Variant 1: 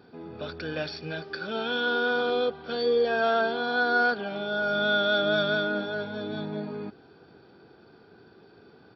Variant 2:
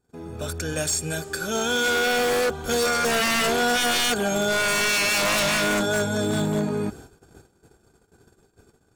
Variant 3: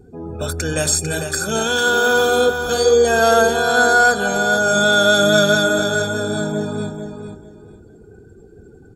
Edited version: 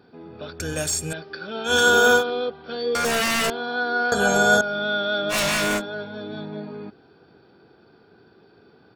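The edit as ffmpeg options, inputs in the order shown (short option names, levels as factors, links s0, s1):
-filter_complex "[1:a]asplit=3[s0][s1][s2];[2:a]asplit=2[s3][s4];[0:a]asplit=6[s5][s6][s7][s8][s9][s10];[s5]atrim=end=0.602[s11];[s0]atrim=start=0.598:end=1.132[s12];[s6]atrim=start=1.128:end=1.74[s13];[s3]atrim=start=1.64:end=2.24[s14];[s7]atrim=start=2.14:end=2.952[s15];[s1]atrim=start=2.948:end=3.502[s16];[s8]atrim=start=3.498:end=4.122[s17];[s4]atrim=start=4.118:end=4.612[s18];[s9]atrim=start=4.608:end=5.35[s19];[s2]atrim=start=5.29:end=5.82[s20];[s10]atrim=start=5.76[s21];[s11][s12]acrossfade=d=0.004:c1=hsin:c2=hsin[s22];[s22][s13]acrossfade=d=0.004:c1=hsin:c2=hsin[s23];[s23][s14]acrossfade=d=0.1:c1=tri:c2=tri[s24];[s24][s15]acrossfade=d=0.1:c1=tri:c2=tri[s25];[s25][s16]acrossfade=d=0.004:c1=hsin:c2=hsin[s26];[s26][s17]acrossfade=d=0.004:c1=hsin:c2=hsin[s27];[s27][s18]acrossfade=d=0.004:c1=hsin:c2=hsin[s28];[s28][s19]acrossfade=d=0.004:c1=hsin:c2=hsin[s29];[s29][s20]acrossfade=d=0.06:c1=tri:c2=tri[s30];[s30][s21]acrossfade=d=0.06:c1=tri:c2=tri"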